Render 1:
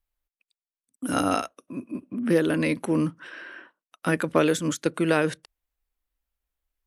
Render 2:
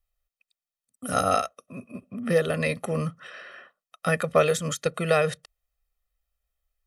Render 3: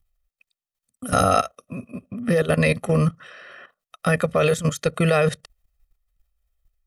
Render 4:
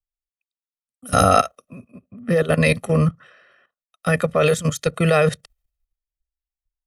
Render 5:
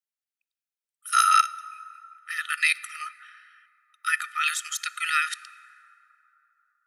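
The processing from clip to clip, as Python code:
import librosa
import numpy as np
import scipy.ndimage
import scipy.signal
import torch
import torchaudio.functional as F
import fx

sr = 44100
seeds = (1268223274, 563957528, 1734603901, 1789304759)

y1 = x + 0.91 * np.pad(x, (int(1.6 * sr / 1000.0), 0))[:len(x)]
y1 = F.gain(torch.from_numpy(y1), -1.5).numpy()
y2 = fx.low_shelf(y1, sr, hz=110.0, db=10.5)
y2 = fx.level_steps(y2, sr, step_db=13)
y2 = F.gain(torch.from_numpy(y2), 8.5).numpy()
y3 = fx.band_widen(y2, sr, depth_pct=70)
y3 = F.gain(torch.from_numpy(y3), 1.5).numpy()
y4 = fx.brickwall_highpass(y3, sr, low_hz=1200.0)
y4 = fx.rev_plate(y4, sr, seeds[0], rt60_s=3.3, hf_ratio=0.45, predelay_ms=0, drr_db=17.0)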